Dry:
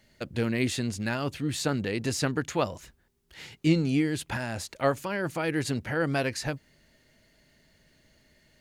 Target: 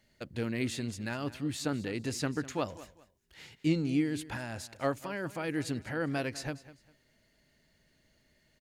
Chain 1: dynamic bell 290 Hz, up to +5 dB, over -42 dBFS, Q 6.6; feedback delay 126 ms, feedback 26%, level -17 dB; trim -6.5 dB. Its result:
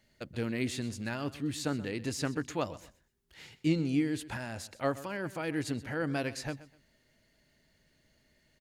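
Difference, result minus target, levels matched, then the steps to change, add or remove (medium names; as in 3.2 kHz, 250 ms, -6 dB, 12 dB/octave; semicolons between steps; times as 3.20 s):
echo 74 ms early
change: feedback delay 200 ms, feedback 26%, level -17 dB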